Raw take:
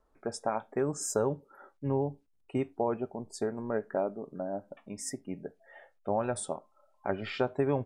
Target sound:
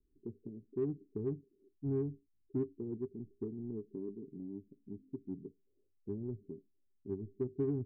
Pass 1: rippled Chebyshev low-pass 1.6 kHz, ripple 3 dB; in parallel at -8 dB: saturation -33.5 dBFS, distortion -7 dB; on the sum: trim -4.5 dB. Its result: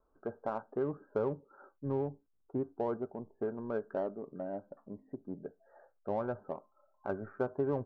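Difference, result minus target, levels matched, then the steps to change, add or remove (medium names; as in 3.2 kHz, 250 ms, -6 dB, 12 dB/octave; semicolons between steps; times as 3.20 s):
2 kHz band +19.5 dB
change: rippled Chebyshev low-pass 410 Hz, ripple 3 dB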